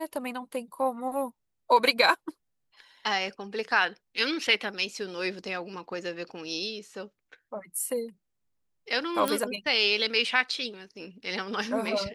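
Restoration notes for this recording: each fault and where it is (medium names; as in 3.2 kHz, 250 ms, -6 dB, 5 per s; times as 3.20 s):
9.28 s: pop -12 dBFS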